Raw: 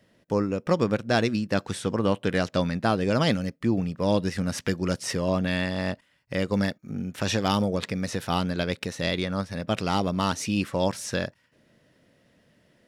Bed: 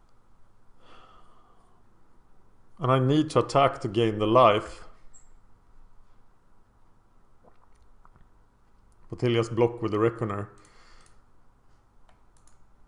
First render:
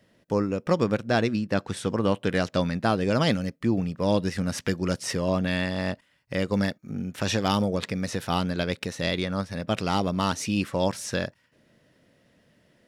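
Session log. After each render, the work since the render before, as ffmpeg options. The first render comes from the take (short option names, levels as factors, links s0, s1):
-filter_complex "[0:a]asettb=1/sr,asplit=3[s0][s1][s2];[s0]atrim=end=1.104[s3];[s1]atrim=start=1.1:end=1.77,asetpts=PTS-STARTPTS,afade=t=in:d=0.004:c=qsin,afade=t=out:st=0.666:d=0.004:c=qsin,highshelf=f=4100:g=-6[s4];[s2]atrim=start=1.766[s5];[s3][s4]acrossfade=d=0.004:c1=hsin:c2=qsin[s6];[s6][s5]acrossfade=d=0.004:c1=qsin:c2=hsin"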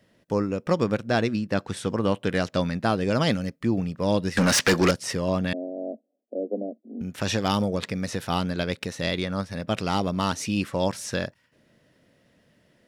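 -filter_complex "[0:a]asettb=1/sr,asplit=3[s0][s1][s2];[s0]atrim=end=4.374[s3];[s1]atrim=start=4.37:end=4.91,asetpts=PTS-STARTPTS,afade=t=in:d=0.004:c=qsin,afade=t=out:st=0.536:d=0.004:c=qsin,asplit=2[s4][s5];[s5]highpass=f=720:p=1,volume=25.1,asoftclip=type=tanh:threshold=0.316[s6];[s4][s6]amix=inputs=2:normalize=0,lowpass=f=6900:p=1,volume=0.501[s7];[s2]atrim=start=4.906[s8];[s3][s7]acrossfade=d=0.004:c1=hsin:c2=qsin[s9];[s9][s8]acrossfade=d=0.004:c1=qsin:c2=hsin,asettb=1/sr,asplit=3[s10][s11][s12];[s10]atrim=end=5.534[s13];[s11]atrim=start=5.53:end=7.01,asetpts=PTS-STARTPTS,afade=t=in:d=0.004:c=qsin,afade=t=out:st=1.476:d=0.004:c=qsin,asuperpass=centerf=400:order=20:qfactor=0.77[s14];[s12]atrim=start=7.006[s15];[s13][s14]acrossfade=d=0.004:c1=hsin:c2=qsin[s16];[s16][s15]acrossfade=d=0.004:c1=qsin:c2=hsin"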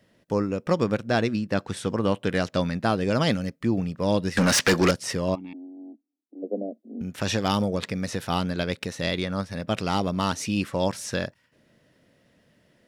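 -filter_complex "[0:a]asplit=3[s0][s1][s2];[s0]afade=t=out:st=5.34:d=0.02[s3];[s1]asplit=3[s4][s5][s6];[s4]bandpass=f=300:t=q:w=8,volume=1[s7];[s5]bandpass=f=870:t=q:w=8,volume=0.501[s8];[s6]bandpass=f=2240:t=q:w=8,volume=0.355[s9];[s7][s8][s9]amix=inputs=3:normalize=0,afade=t=in:st=5.34:d=0.02,afade=t=out:st=6.42:d=0.02[s10];[s2]afade=t=in:st=6.42:d=0.02[s11];[s3][s10][s11]amix=inputs=3:normalize=0"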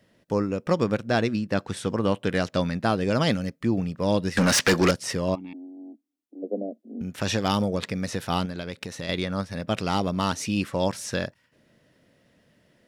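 -filter_complex "[0:a]asettb=1/sr,asplit=3[s0][s1][s2];[s0]atrim=end=8.454[s3];[s1]atrim=start=8.45:end=9.09,asetpts=PTS-STARTPTS,afade=t=in:d=0.004:c=qsin,afade=t=out:st=0.636:d=0.004:c=qsin,acompressor=threshold=0.0316:ratio=3:attack=3.2:release=140:knee=1:detection=peak[s4];[s2]atrim=start=9.086[s5];[s3][s4]acrossfade=d=0.004:c1=hsin:c2=qsin[s6];[s6][s5]acrossfade=d=0.004:c1=qsin:c2=hsin"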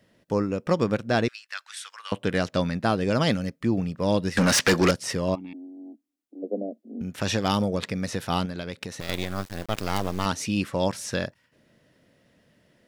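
-filter_complex "[0:a]asettb=1/sr,asplit=3[s0][s1][s2];[s0]atrim=end=1.284[s3];[s1]atrim=start=1.28:end=2.12,asetpts=PTS-STARTPTS,afade=t=in:d=0.004:c=qsin,afade=t=out:st=0.836:d=0.004:c=qsin,highpass=f=1400:w=0.5412,highpass=f=1400:w=1.3066[s4];[s2]atrim=start=2.116[s5];[s3][s4]acrossfade=d=0.004:c1=hsin:c2=qsin[s6];[s6][s5]acrossfade=d=0.004:c1=qsin:c2=hsin,asettb=1/sr,asplit=3[s7][s8][s9];[s7]atrim=end=5.464[s10];[s8]atrim=start=5.46:end=5.86,asetpts=PTS-STARTPTS,afade=t=in:d=0.004:c=qsin,afade=t=out:st=0.396:d=0.004:c=qsin,equalizer=f=930:w=1.7:g=-4.5[s11];[s9]atrim=start=5.856[s12];[s10][s11]acrossfade=d=0.004:c1=hsin:c2=qsin[s13];[s13][s12]acrossfade=d=0.004:c1=qsin:c2=hsin,asettb=1/sr,asplit=3[s14][s15][s16];[s14]atrim=end=9.004[s17];[s15]atrim=start=9:end=10.26,asetpts=PTS-STARTPTS,afade=t=in:d=0.004:c=qsin,afade=t=out:st=1.256:d=0.004:c=qsin,acrusher=bits=4:dc=4:mix=0:aa=0.000001[s18];[s16]atrim=start=10.256[s19];[s17][s18]acrossfade=d=0.004:c1=hsin:c2=qsin[s20];[s20][s19]acrossfade=d=0.004:c1=qsin:c2=hsin"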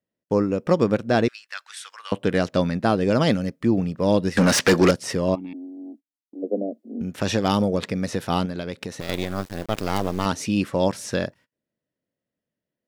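-af "agate=range=0.0398:threshold=0.00316:ratio=16:detection=peak,equalizer=f=360:w=0.49:g=5"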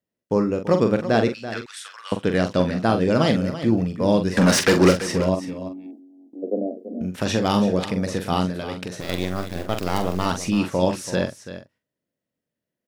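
-filter_complex "[0:a]asplit=2[s0][s1];[s1]adelay=44,volume=0.422[s2];[s0][s2]amix=inputs=2:normalize=0,aecho=1:1:334:0.237"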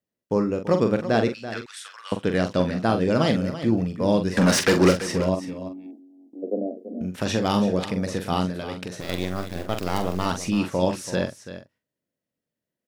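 -af "volume=0.794"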